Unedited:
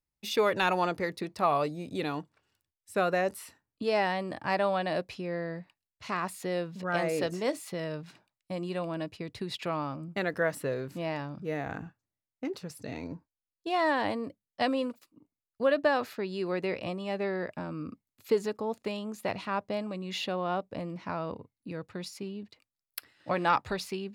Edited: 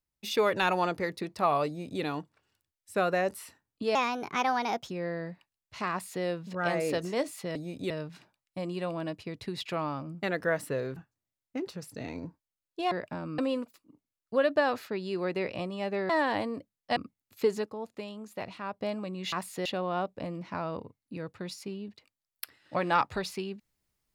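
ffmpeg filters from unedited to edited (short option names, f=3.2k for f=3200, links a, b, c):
-filter_complex "[0:a]asplit=14[a][b][c][d][e][f][g][h][i][j][k][l][m][n];[a]atrim=end=3.954[o];[b]atrim=start=3.95:end=5.19,asetpts=PTS-STARTPTS,asetrate=57330,aresample=44100[p];[c]atrim=start=5.186:end=7.842[q];[d]atrim=start=1.668:end=2.022[r];[e]atrim=start=7.838:end=10.902[s];[f]atrim=start=11.838:end=13.792[t];[g]atrim=start=17.368:end=17.842[u];[h]atrim=start=14.658:end=17.372[v];[i]atrim=start=13.788:end=14.662[w];[j]atrim=start=17.838:end=18.542[x];[k]atrim=start=18.538:end=19.682,asetpts=PTS-STARTPTS,volume=-5.5dB[y];[l]atrim=start=19.678:end=20.202[z];[m]atrim=start=6.188:end=6.522[aa];[n]atrim=start=20.198[ab];[o][p]acrossfade=d=0.004:c1=hsin:c2=hsin[ac];[ac][q]acrossfade=d=0.004:c1=hsin:c2=hsin[ad];[ad][r]acrossfade=d=0.004:c1=hsin:c2=hsin[ae];[ae][s]acrossfade=d=0.004:c1=hsin:c2=hsin[af];[af][t]acrossfade=d=0.004:c1=hsin:c2=hsin[ag];[ag][u]acrossfade=d=0.004:c1=hsin:c2=hsin[ah];[ah][v]acrossfade=d=0.004:c1=hsin:c2=hsin[ai];[ai][w]acrossfade=d=0.004:c1=hsin:c2=hsin[aj];[aj][x]acrossfade=d=0.004:c1=hsin:c2=hsin[ak];[ak][y]acrossfade=d=0.004:c1=hsin:c2=hsin[al];[al][z]acrossfade=d=0.004:c1=hsin:c2=hsin[am];[am][aa]acrossfade=d=0.004:c1=hsin:c2=hsin[an];[an][ab]acrossfade=d=0.004:c1=hsin:c2=hsin"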